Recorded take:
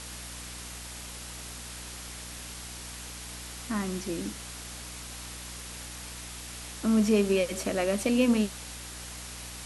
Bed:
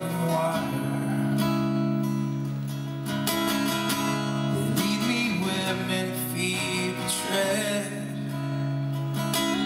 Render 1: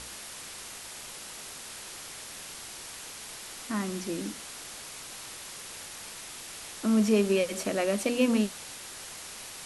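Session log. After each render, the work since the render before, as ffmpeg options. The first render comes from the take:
-af "bandreject=f=60:t=h:w=6,bandreject=f=120:t=h:w=6,bandreject=f=180:t=h:w=6,bandreject=f=240:t=h:w=6,bandreject=f=300:t=h:w=6"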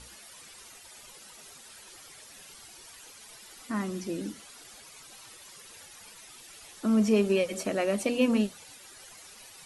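-af "afftdn=nr=12:nf=-43"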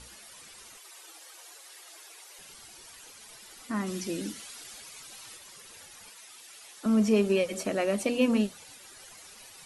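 -filter_complex "[0:a]asettb=1/sr,asplit=3[s0][s1][s2];[s0]atrim=end=0.774[s3];[s1]atrim=start=0.77:end=2.39,asetpts=PTS-STARTPTS,afade=t=in:d=0.004:c=qsin,afade=t=out:st=1.616:d=0.004:c=qsin,afreqshift=310[s4];[s2]atrim=start=2.386[s5];[s3][s4]acrossfade=d=0.004:c1=hsin:c2=qsin[s6];[s6][s5]acrossfade=d=0.004:c1=qsin:c2=hsin,asplit=3[s7][s8][s9];[s7]afade=t=out:st=3.86:d=0.02[s10];[s8]adynamicequalizer=threshold=0.00178:dfrequency=1600:dqfactor=0.7:tfrequency=1600:tqfactor=0.7:attack=5:release=100:ratio=0.375:range=3:mode=boostabove:tftype=highshelf,afade=t=in:st=3.86:d=0.02,afade=t=out:st=5.37:d=0.02[s11];[s9]afade=t=in:st=5.37:d=0.02[s12];[s10][s11][s12]amix=inputs=3:normalize=0,asettb=1/sr,asplit=3[s13][s14][s15];[s13]atrim=end=6.104[s16];[s14]atrim=start=6.1:end=6.86,asetpts=PTS-STARTPTS,afade=t=in:d=0.004:c=qsin,afade=t=out:st=0.756:d=0.004:c=qsin,highpass=f=600:p=1[s17];[s15]atrim=start=6.856[s18];[s16][s17]acrossfade=d=0.004:c1=hsin:c2=qsin[s19];[s19][s18]acrossfade=d=0.004:c1=qsin:c2=hsin"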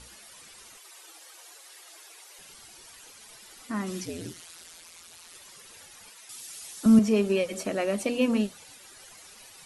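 -filter_complex "[0:a]asettb=1/sr,asplit=3[s0][s1][s2];[s0]atrim=end=4.054[s3];[s1]atrim=start=4.05:end=5.35,asetpts=PTS-STARTPTS,afade=t=in:d=0.004:c=qsin,afade=t=out:st=1.296:d=0.004:c=qsin,aeval=exprs='val(0)*sin(2*PI*84*n/s)':c=same[s4];[s2]atrim=start=5.346[s5];[s3][s4]acrossfade=d=0.004:c1=hsin:c2=qsin[s6];[s6][s5]acrossfade=d=0.004:c1=qsin:c2=hsin,asettb=1/sr,asplit=3[s7][s8][s9];[s7]atrim=end=6.294[s10];[s8]atrim=start=6.29:end=6.99,asetpts=PTS-STARTPTS,afade=t=in:d=0.004:c=qsin,afade=t=out:st=0.696:d=0.004:c=qsin,bass=f=250:g=13,treble=f=4000:g=9[s11];[s9]atrim=start=6.986[s12];[s10][s11]acrossfade=d=0.004:c1=hsin:c2=qsin[s13];[s13][s12]acrossfade=d=0.004:c1=qsin:c2=hsin"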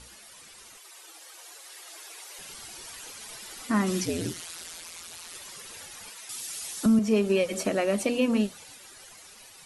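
-af "dynaudnorm=f=540:g=7:m=2.24,alimiter=limit=0.2:level=0:latency=1:release=363"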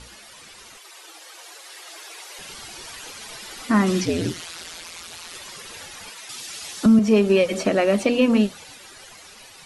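-filter_complex "[0:a]acrossover=split=5900[s0][s1];[s0]acontrast=83[s2];[s1]alimiter=level_in=3.35:limit=0.0631:level=0:latency=1:release=276,volume=0.299[s3];[s2][s3]amix=inputs=2:normalize=0"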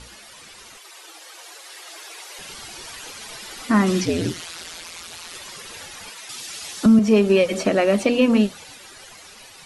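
-af "volume=1.12"

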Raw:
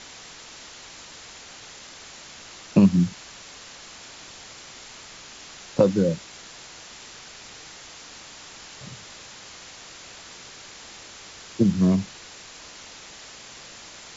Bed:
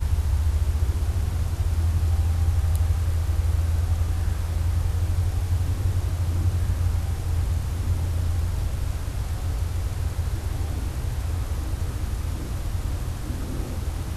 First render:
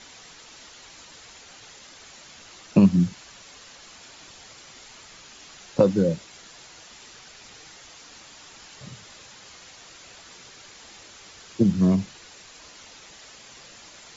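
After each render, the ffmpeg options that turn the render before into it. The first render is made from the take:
-af "afftdn=nr=6:nf=-44"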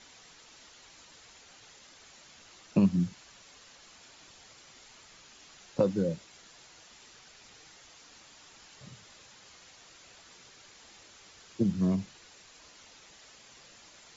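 -af "volume=0.398"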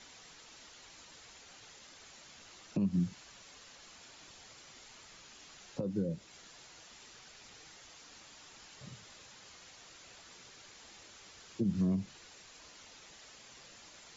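-filter_complex "[0:a]alimiter=limit=0.0668:level=0:latency=1:release=159,acrossover=split=440[s0][s1];[s1]acompressor=threshold=0.00316:ratio=2.5[s2];[s0][s2]amix=inputs=2:normalize=0"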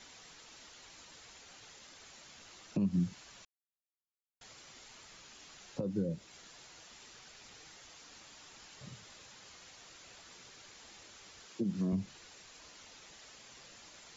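-filter_complex "[0:a]asettb=1/sr,asplit=3[s0][s1][s2];[s0]atrim=end=11.464[s3];[s1]atrim=start=11.46:end=11.93,asetpts=PTS-STARTPTS,afade=t=in:d=0.004:c=qsin,afade=t=out:st=0.466:d=0.004:c=qsin,highpass=190[s4];[s2]atrim=start=11.926[s5];[s3][s4]acrossfade=d=0.004:c1=hsin:c2=qsin[s6];[s6][s5]acrossfade=d=0.004:c1=qsin:c2=hsin,asplit=3[s7][s8][s9];[s7]atrim=end=3.45,asetpts=PTS-STARTPTS,afade=t=out:st=3.446:d=0.004:c=hsin[s10];[s8]atrim=start=3.45:end=4.41,asetpts=PTS-STARTPTS,volume=0[s11];[s9]atrim=start=4.41,asetpts=PTS-STARTPTS,afade=t=in:d=0.004:c=hsin[s12];[s10][s11][s12]concat=n=3:v=0:a=1"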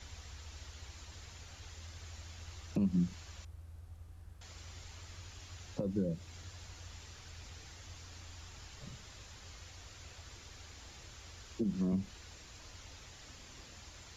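-filter_complex "[1:a]volume=0.0376[s0];[0:a][s0]amix=inputs=2:normalize=0"

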